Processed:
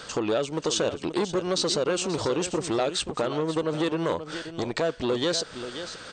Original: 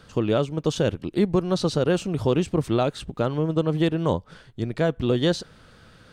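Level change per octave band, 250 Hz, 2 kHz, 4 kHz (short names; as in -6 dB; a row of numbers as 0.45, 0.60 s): -5.0, +0.5, +4.0 dB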